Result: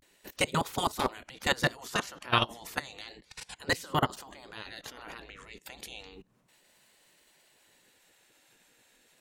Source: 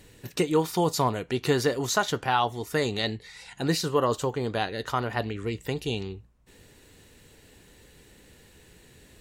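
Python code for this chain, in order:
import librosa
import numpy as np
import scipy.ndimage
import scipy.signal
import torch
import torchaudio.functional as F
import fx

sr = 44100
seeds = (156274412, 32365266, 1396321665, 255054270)

y = fx.level_steps(x, sr, step_db=23)
y = fx.vibrato(y, sr, rate_hz=0.32, depth_cents=70.0)
y = fx.spec_gate(y, sr, threshold_db=-10, keep='weak')
y = y * librosa.db_to_amplitude(8.5)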